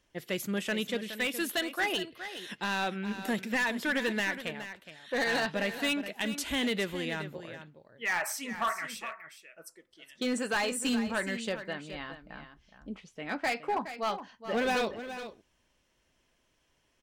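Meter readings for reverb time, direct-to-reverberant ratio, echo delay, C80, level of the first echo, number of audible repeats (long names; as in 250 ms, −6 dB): no reverb audible, no reverb audible, 418 ms, no reverb audible, −11.5 dB, 1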